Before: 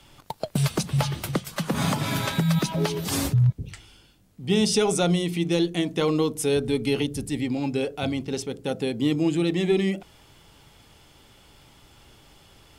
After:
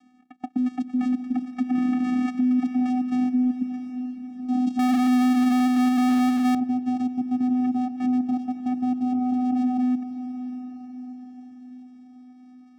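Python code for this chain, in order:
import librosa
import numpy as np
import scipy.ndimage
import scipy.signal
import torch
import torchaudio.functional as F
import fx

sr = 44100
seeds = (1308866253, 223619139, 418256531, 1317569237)

y = scipy.signal.sosfilt(scipy.signal.butter(2, 2500.0, 'lowpass', fs=sr, output='sos'), x)
y = fx.level_steps(y, sr, step_db=15)
y = fx.vocoder(y, sr, bands=4, carrier='square', carrier_hz=251.0)
y = fx.echo_diffused(y, sr, ms=663, feedback_pct=51, wet_db=-12.0)
y = fx.power_curve(y, sr, exponent=0.35, at=(4.79, 6.55))
y = F.gain(torch.from_numpy(y), 6.5).numpy()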